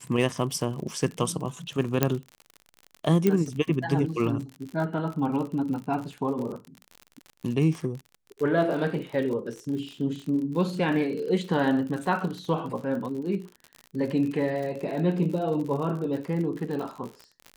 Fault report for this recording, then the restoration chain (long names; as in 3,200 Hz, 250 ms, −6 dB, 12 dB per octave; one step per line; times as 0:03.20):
surface crackle 58 per second −33 dBFS
0:02.03: click −6 dBFS
0:03.27: click −10 dBFS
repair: click removal